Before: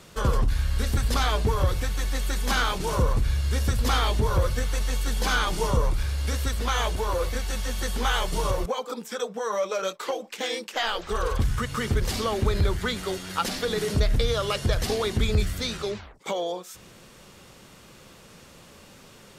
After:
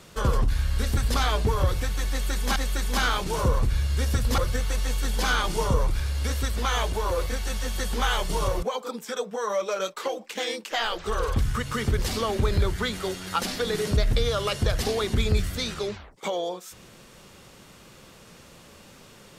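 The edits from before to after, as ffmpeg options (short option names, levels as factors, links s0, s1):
-filter_complex "[0:a]asplit=3[s0][s1][s2];[s0]atrim=end=2.562[s3];[s1]atrim=start=2.098:end=3.922[s4];[s2]atrim=start=4.408[s5];[s3][s4]acrossfade=d=0.004:c1=hsin:c2=hsin[s6];[s6][s5]acrossfade=d=0.004:c1=hsin:c2=hsin"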